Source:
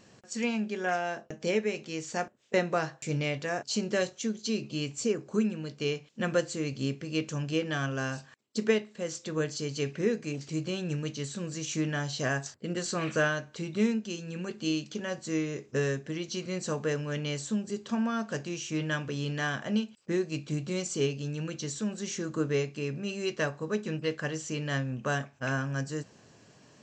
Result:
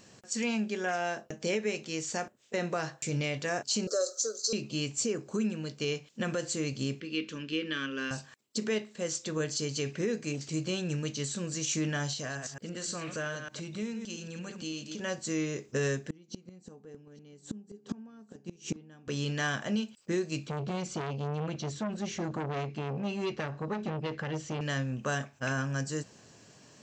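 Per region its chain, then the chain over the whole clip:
0:03.87–0:04.53: high-pass filter 490 Hz 24 dB per octave + downward compressor 1.5 to 1, threshold −39 dBFS + drawn EQ curve 110 Hz 0 dB, 570 Hz +11 dB, 910 Hz −16 dB, 1,300 Hz +13 dB, 2,000 Hz −23 dB, 2,900 Hz −25 dB, 4,400 Hz +9 dB
0:07.00–0:08.11: high shelf with overshoot 4,900 Hz −13 dB, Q 1.5 + phaser with its sweep stopped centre 300 Hz, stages 4
0:12.13–0:15.00: delay that plays each chunk backwards 113 ms, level −10 dB + notch filter 380 Hz, Q 8.2 + downward compressor 2 to 1, threshold −40 dBFS
0:16.10–0:19.08: hollow resonant body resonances 200/280/410/760 Hz, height 15 dB + gate with flip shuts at −17 dBFS, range −31 dB + single-tap delay 842 ms −20.5 dB
0:20.48–0:24.61: low-pass filter 3,600 Hz + low-shelf EQ 230 Hz +8.5 dB + saturating transformer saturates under 1,200 Hz
whole clip: brickwall limiter −22.5 dBFS; high-shelf EQ 5,100 Hz +8 dB

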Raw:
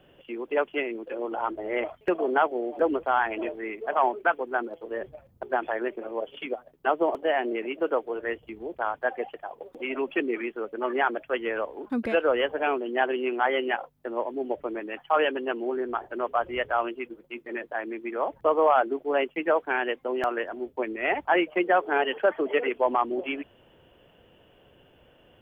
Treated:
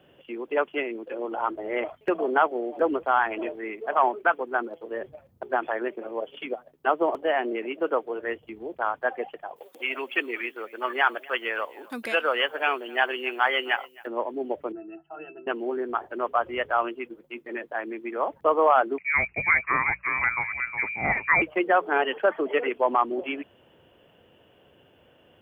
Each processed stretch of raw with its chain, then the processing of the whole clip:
0:09.56–0:14.07: spectral tilt +4.5 dB per octave + single-tap delay 266 ms −22 dB
0:14.72–0:15.47: mu-law and A-law mismatch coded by mu + low-pass filter 2,800 Hz 24 dB per octave + resonances in every octave E, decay 0.14 s
0:18.98–0:21.42: voice inversion scrambler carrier 2,700 Hz + low-shelf EQ 150 Hz +8.5 dB + single-tap delay 362 ms −7 dB
whole clip: high-pass filter 73 Hz; mains-hum notches 60/120/180 Hz; dynamic equaliser 1,200 Hz, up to +4 dB, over −36 dBFS, Q 2.2

